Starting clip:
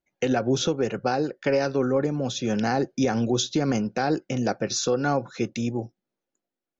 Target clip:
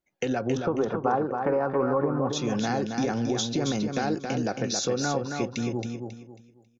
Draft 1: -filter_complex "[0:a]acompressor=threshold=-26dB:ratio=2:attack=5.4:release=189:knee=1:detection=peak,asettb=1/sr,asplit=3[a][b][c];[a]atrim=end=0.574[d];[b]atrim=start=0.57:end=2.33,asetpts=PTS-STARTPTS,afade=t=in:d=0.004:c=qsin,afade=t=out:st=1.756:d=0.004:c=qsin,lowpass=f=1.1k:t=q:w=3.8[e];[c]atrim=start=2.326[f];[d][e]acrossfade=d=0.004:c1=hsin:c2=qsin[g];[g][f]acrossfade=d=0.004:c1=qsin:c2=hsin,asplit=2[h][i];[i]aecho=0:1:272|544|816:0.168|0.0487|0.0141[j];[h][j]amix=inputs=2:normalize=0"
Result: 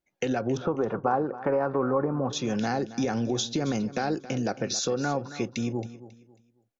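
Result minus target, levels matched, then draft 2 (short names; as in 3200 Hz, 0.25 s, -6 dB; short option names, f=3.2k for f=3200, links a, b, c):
echo-to-direct -10 dB
-filter_complex "[0:a]acompressor=threshold=-26dB:ratio=2:attack=5.4:release=189:knee=1:detection=peak,asettb=1/sr,asplit=3[a][b][c];[a]atrim=end=0.574[d];[b]atrim=start=0.57:end=2.33,asetpts=PTS-STARTPTS,afade=t=in:d=0.004:c=qsin,afade=t=out:st=1.756:d=0.004:c=qsin,lowpass=f=1.1k:t=q:w=3.8[e];[c]atrim=start=2.326[f];[d][e]acrossfade=d=0.004:c1=hsin:c2=qsin[g];[g][f]acrossfade=d=0.004:c1=qsin:c2=hsin,asplit=2[h][i];[i]aecho=0:1:272|544|816|1088:0.531|0.154|0.0446|0.0129[j];[h][j]amix=inputs=2:normalize=0"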